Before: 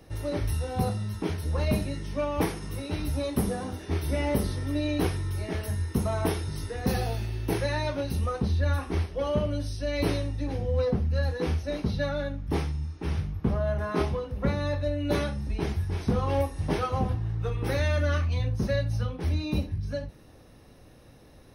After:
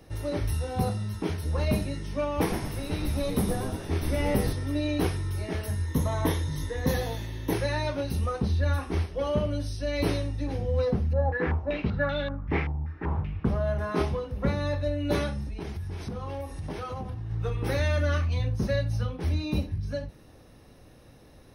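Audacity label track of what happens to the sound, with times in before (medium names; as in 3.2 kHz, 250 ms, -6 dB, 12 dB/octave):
2.300000	4.530000	frequency-shifting echo 116 ms, feedback 54%, per repeat -96 Hz, level -6 dB
5.860000	7.530000	rippled EQ curve crests per octave 1.1, crest to trough 9 dB
11.130000	13.450000	step-sequenced low-pass 5.2 Hz 790–3200 Hz
15.430000	17.310000	compression, threshold -31 dBFS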